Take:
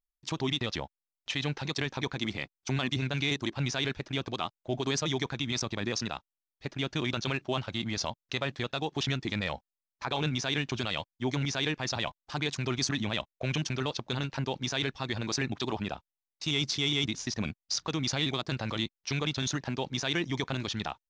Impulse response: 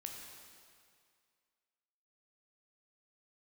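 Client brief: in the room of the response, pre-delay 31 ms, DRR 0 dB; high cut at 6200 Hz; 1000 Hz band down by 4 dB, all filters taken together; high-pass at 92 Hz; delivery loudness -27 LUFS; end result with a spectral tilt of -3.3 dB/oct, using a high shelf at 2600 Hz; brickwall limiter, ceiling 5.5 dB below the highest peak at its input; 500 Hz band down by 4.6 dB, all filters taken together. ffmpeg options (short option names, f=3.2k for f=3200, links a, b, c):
-filter_complex "[0:a]highpass=92,lowpass=6.2k,equalizer=f=500:t=o:g=-5.5,equalizer=f=1k:t=o:g=-4.5,highshelf=f=2.6k:g=6,alimiter=limit=-19dB:level=0:latency=1,asplit=2[a][b];[1:a]atrim=start_sample=2205,adelay=31[c];[b][c]afir=irnorm=-1:irlink=0,volume=3dB[d];[a][d]amix=inputs=2:normalize=0,volume=2.5dB"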